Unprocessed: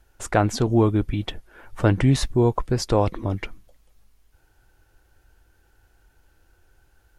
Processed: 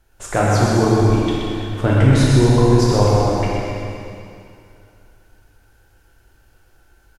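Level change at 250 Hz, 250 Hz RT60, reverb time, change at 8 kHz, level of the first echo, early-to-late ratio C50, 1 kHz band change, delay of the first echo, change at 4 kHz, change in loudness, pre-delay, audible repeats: +6.0 dB, 2.6 s, 2.6 s, +6.5 dB, -6.0 dB, -4.0 dB, +6.5 dB, 0.126 s, +6.5 dB, +6.0 dB, 7 ms, 1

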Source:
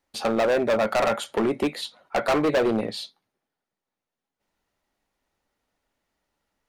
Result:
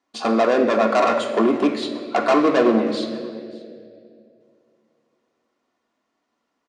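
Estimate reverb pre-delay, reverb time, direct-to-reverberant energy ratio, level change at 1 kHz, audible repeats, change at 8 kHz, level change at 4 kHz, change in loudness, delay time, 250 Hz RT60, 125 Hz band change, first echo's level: 3 ms, 2.4 s, 2.5 dB, +6.5 dB, 1, n/a, +2.0 dB, +4.5 dB, 0.582 s, 2.8 s, -0.5 dB, -21.0 dB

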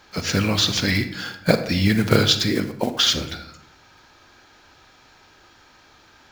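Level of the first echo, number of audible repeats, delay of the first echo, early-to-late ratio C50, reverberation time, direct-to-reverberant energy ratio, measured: none, none, none, 10.5 dB, 0.75 s, 9.0 dB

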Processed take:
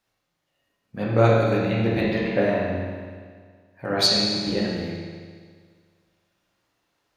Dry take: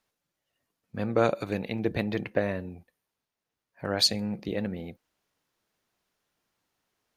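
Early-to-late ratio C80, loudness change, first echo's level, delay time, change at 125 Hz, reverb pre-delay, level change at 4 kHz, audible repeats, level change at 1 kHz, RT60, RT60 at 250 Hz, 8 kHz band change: 0.5 dB, +6.5 dB, none, none, +10.5 dB, 9 ms, +6.5 dB, none, +7.0 dB, 1.8 s, 1.8 s, +3.0 dB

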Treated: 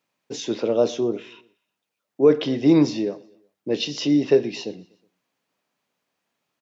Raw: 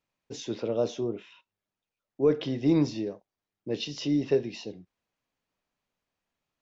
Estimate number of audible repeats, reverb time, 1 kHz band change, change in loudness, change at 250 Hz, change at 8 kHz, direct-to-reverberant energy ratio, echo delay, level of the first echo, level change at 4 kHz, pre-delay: 2, none, +8.0 dB, +7.5 dB, +7.5 dB, n/a, none, 0.122 s, -23.0 dB, +8.0 dB, none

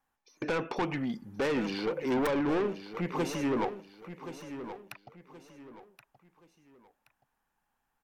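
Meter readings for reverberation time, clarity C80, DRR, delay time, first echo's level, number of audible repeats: none, none, none, 1.075 s, -11.5 dB, 3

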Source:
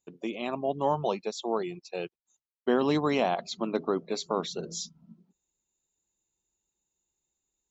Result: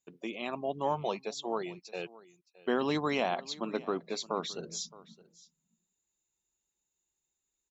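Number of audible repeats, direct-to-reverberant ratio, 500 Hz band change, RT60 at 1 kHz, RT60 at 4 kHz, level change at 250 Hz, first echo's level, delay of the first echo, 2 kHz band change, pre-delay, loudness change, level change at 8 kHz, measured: 1, none, -5.0 dB, none, none, -5.5 dB, -20.5 dB, 0.618 s, -0.5 dB, none, -4.5 dB, n/a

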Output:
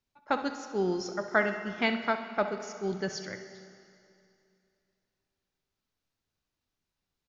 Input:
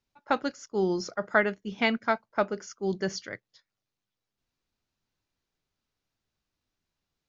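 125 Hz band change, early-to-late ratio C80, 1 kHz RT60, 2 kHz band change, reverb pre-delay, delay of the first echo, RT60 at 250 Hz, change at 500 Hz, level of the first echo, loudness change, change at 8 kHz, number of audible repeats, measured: -2.5 dB, 10.0 dB, 2.6 s, -2.0 dB, 25 ms, 65 ms, 2.6 s, -2.0 dB, -13.0 dB, -2.0 dB, n/a, 1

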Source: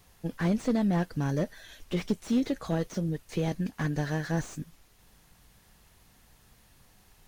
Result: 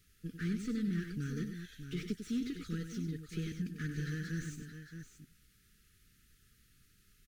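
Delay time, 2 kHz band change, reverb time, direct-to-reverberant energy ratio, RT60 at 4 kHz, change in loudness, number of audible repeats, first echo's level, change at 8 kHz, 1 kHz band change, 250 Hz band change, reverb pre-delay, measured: 96 ms, -7.0 dB, none, none, none, -9.0 dB, 2, -8.5 dB, -6.5 dB, -20.5 dB, -8.0 dB, none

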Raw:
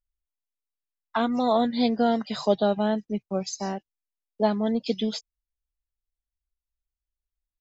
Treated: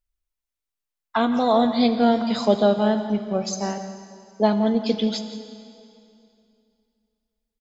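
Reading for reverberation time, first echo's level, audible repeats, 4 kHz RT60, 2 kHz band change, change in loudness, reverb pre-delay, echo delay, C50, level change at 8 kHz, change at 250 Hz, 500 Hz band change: 2.6 s, -14.5 dB, 1, 2.4 s, +4.0 dB, +4.5 dB, 4 ms, 0.172 s, 8.5 dB, n/a, +5.0 dB, +4.0 dB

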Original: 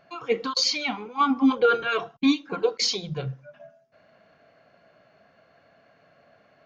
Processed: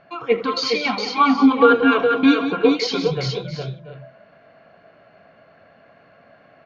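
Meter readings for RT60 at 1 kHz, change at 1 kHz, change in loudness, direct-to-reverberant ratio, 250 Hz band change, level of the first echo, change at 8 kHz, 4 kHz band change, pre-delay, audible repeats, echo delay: none, +7.5 dB, +6.5 dB, none, +7.5 dB, -16.0 dB, n/a, +1.5 dB, none, 5, 78 ms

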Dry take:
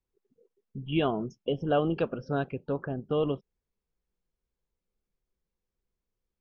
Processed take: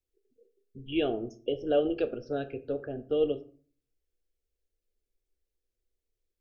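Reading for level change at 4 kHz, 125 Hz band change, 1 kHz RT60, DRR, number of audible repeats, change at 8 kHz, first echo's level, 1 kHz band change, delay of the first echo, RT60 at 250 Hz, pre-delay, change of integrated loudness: -1.0 dB, -10.5 dB, 0.40 s, 9.5 dB, none, n/a, none, -7.0 dB, none, 0.60 s, 7 ms, -1.0 dB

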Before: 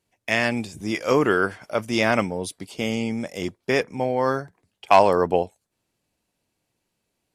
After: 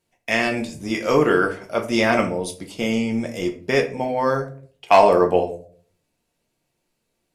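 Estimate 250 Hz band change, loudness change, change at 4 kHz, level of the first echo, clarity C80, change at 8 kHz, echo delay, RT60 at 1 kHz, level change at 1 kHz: +3.0 dB, +2.5 dB, +1.5 dB, none, 16.5 dB, +1.5 dB, none, 0.40 s, +2.0 dB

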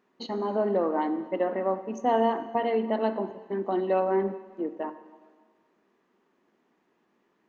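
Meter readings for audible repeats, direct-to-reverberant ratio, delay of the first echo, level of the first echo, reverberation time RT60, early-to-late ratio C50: none, 11.0 dB, none, none, 1.6 s, 13.0 dB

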